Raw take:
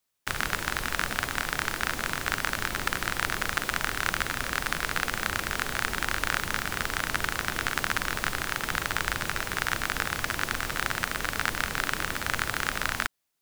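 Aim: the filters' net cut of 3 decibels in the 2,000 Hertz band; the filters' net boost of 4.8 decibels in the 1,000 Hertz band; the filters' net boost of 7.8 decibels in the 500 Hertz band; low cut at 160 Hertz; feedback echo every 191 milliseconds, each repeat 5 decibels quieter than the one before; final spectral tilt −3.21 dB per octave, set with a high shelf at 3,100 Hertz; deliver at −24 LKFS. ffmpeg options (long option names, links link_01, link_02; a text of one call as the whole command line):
ffmpeg -i in.wav -af "highpass=160,equalizer=frequency=500:width_type=o:gain=8,equalizer=frequency=1000:width_type=o:gain=8,equalizer=frequency=2000:width_type=o:gain=-7.5,highshelf=frequency=3100:gain=-3.5,aecho=1:1:191|382|573|764|955|1146|1337:0.562|0.315|0.176|0.0988|0.0553|0.031|0.0173,volume=3.5dB" out.wav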